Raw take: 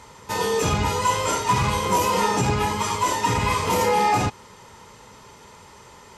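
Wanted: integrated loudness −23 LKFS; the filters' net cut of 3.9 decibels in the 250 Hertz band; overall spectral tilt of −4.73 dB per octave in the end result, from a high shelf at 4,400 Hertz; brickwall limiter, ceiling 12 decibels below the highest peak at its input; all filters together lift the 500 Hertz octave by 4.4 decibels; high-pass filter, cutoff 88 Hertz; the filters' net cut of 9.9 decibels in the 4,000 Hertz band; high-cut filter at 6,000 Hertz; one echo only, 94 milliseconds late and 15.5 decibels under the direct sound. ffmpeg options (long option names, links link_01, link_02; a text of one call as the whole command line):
ffmpeg -i in.wav -af "highpass=88,lowpass=6000,equalizer=frequency=250:width_type=o:gain=-7.5,equalizer=frequency=500:width_type=o:gain=7,equalizer=frequency=4000:width_type=o:gain=-8.5,highshelf=frequency=4400:gain=-8.5,alimiter=limit=-20dB:level=0:latency=1,aecho=1:1:94:0.168,volume=5dB" out.wav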